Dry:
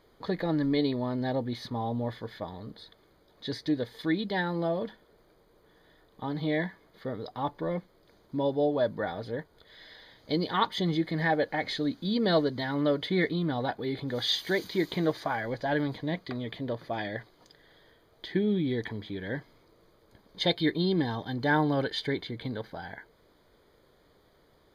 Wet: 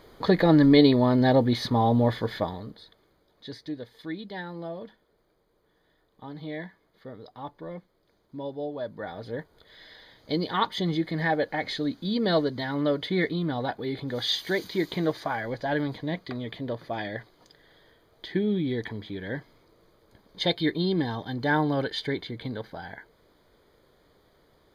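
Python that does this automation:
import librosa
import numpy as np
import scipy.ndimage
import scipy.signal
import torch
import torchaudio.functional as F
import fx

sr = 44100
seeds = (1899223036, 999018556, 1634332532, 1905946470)

y = fx.gain(x, sr, db=fx.line((2.4, 10.0), (2.76, -0.5), (3.76, -7.0), (8.84, -7.0), (9.38, 1.0)))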